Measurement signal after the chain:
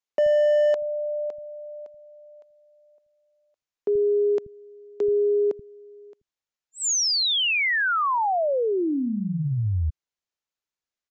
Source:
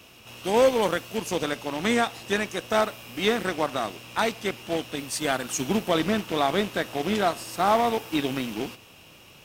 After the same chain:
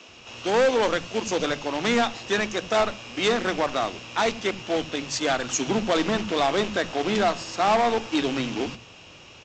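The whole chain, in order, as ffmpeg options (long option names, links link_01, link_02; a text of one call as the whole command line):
ffmpeg -i in.wav -filter_complex "[0:a]aresample=16000,volume=20.5dB,asoftclip=hard,volume=-20.5dB,aresample=44100,acrossover=split=190[link_01][link_02];[link_01]adelay=80[link_03];[link_03][link_02]amix=inputs=2:normalize=0,volume=4dB" out.wav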